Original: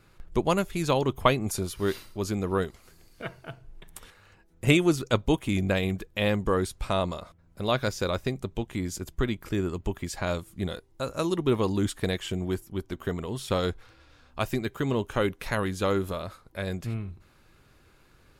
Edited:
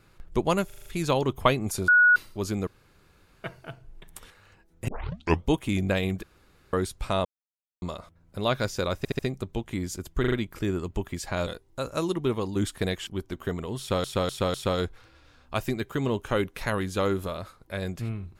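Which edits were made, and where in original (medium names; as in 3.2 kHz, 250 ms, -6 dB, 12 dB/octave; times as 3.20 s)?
0.66 s: stutter 0.04 s, 6 plays
1.68–1.96 s: bleep 1.46 kHz -14 dBFS
2.47–3.24 s: room tone
4.68 s: tape start 0.60 s
6.03–6.53 s: room tone
7.05 s: insert silence 0.57 s
8.21 s: stutter 0.07 s, 4 plays
9.22 s: stutter 0.04 s, 4 plays
10.37–10.69 s: delete
11.24–11.78 s: fade out, to -6 dB
12.29–12.67 s: delete
13.39–13.64 s: loop, 4 plays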